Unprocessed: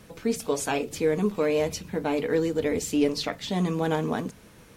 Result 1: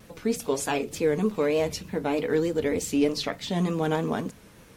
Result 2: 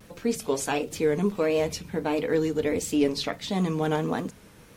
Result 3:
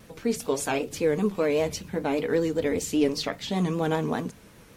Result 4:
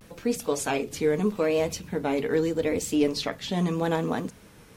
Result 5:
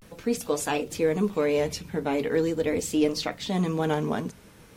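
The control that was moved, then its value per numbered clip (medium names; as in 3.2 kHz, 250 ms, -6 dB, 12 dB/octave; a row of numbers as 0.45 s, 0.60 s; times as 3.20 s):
vibrato, rate: 3.3 Hz, 1.5 Hz, 5.1 Hz, 0.81 Hz, 0.41 Hz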